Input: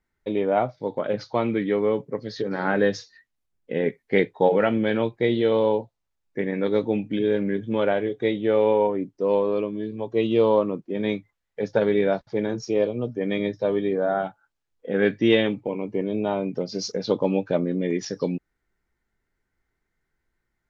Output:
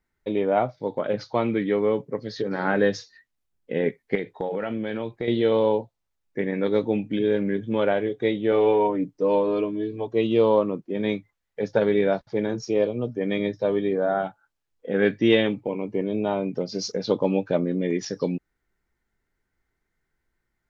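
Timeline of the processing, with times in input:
4.15–5.28 s: compression, threshold -24 dBFS
8.51–10.07 s: comb 6.6 ms

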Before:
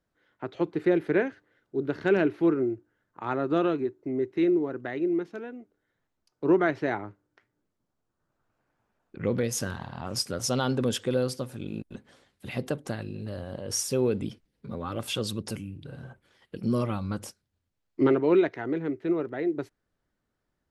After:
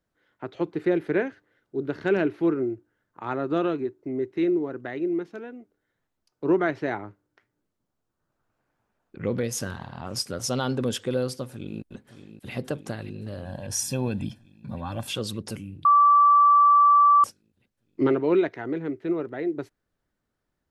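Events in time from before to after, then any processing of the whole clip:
11.50–12.52 s: echo throw 570 ms, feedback 75%, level -11 dB
13.45–15.07 s: comb 1.2 ms, depth 73%
15.85–17.24 s: bleep 1.16 kHz -13 dBFS

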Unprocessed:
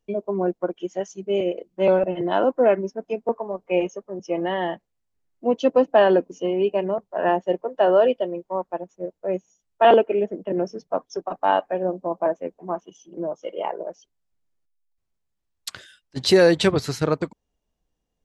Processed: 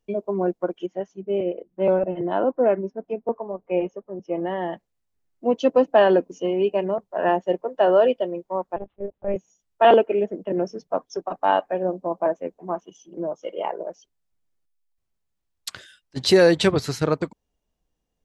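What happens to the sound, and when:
0.86–4.73 s: tape spacing loss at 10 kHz 32 dB
8.76–9.36 s: monotone LPC vocoder at 8 kHz 200 Hz

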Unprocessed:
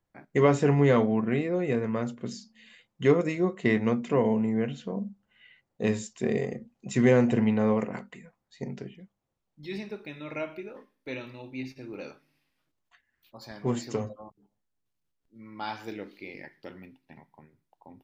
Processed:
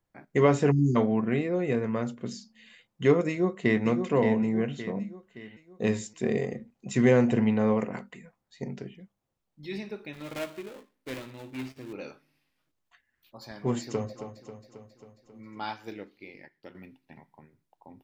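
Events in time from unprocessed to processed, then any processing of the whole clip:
0.71–0.96 s: spectral selection erased 400–4500 Hz
3.28–3.85 s: echo throw 570 ms, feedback 45%, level -7 dB
10.13–11.93 s: dead-time distortion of 0.23 ms
13.81–14.22 s: echo throw 270 ms, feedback 65%, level -10.5 dB
15.67–16.75 s: upward expansion, over -55 dBFS

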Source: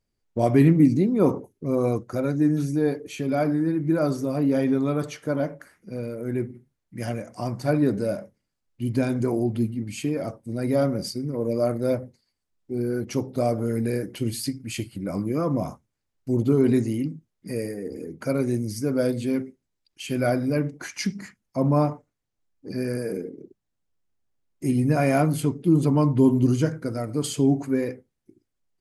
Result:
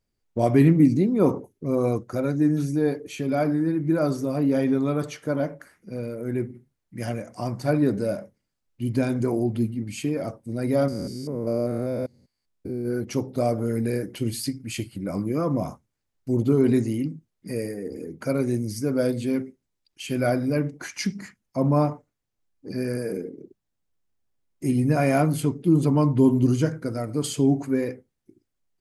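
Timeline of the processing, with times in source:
10.88–12.88 s: spectrogram pixelated in time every 200 ms

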